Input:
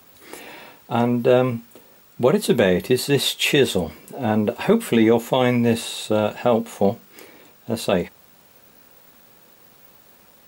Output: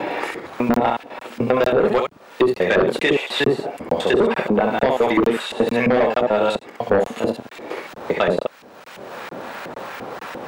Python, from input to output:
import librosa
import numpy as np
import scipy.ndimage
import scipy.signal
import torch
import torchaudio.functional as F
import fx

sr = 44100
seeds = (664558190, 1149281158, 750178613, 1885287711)

y = fx.block_reorder(x, sr, ms=100.0, group=6)
y = fx.room_early_taps(y, sr, ms=(24, 67), db=(-10.0, -5.0))
y = fx.filter_lfo_bandpass(y, sr, shape='saw_up', hz=2.9, low_hz=370.0, high_hz=2100.0, q=0.79)
y = fx.fold_sine(y, sr, drive_db=7, ceiling_db=-5.0)
y = fx.buffer_crackle(y, sr, first_s=0.74, period_s=0.45, block=1024, kind='zero')
y = fx.band_squash(y, sr, depth_pct=70)
y = F.gain(torch.from_numpy(y), -4.5).numpy()